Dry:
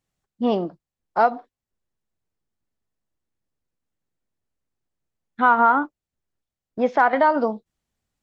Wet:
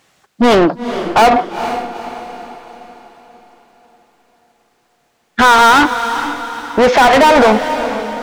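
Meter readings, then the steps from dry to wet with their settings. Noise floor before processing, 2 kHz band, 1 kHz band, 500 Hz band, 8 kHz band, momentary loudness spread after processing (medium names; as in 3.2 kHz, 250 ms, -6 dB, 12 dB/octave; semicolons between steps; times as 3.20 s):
under -85 dBFS, +12.0 dB, +10.0 dB, +11.5 dB, no reading, 18 LU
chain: overdrive pedal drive 35 dB, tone 3.5 kHz, clips at -5.5 dBFS; echo that smears into a reverb 453 ms, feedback 47%, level -10 dB; trim +3.5 dB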